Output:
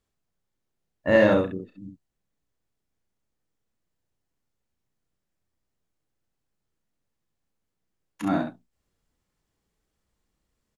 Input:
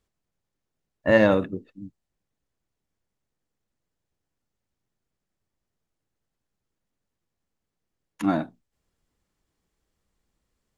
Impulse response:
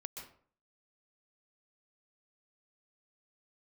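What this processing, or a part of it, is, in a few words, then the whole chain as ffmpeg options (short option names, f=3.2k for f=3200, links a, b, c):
slapback doubling: -filter_complex "[0:a]asplit=3[a][b][c];[b]adelay=32,volume=-7.5dB[d];[c]adelay=66,volume=-4dB[e];[a][d][e]amix=inputs=3:normalize=0,volume=-2.5dB"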